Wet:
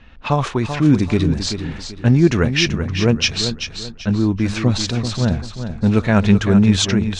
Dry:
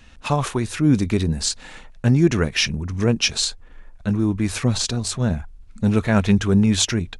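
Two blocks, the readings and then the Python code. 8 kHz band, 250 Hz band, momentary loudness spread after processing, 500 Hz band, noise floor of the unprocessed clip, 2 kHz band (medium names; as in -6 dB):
-2.5 dB, +3.5 dB, 10 LU, +3.5 dB, -45 dBFS, +3.5 dB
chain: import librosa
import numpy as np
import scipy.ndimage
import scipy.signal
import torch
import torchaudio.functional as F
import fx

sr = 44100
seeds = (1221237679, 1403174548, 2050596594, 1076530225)

y = scipy.signal.sosfilt(scipy.signal.butter(2, 5900.0, 'lowpass', fs=sr, output='sos'), x)
y = fx.env_lowpass(y, sr, base_hz=3000.0, full_db=-13.5)
y = fx.echo_feedback(y, sr, ms=386, feedback_pct=32, wet_db=-9.0)
y = F.gain(torch.from_numpy(y), 3.0).numpy()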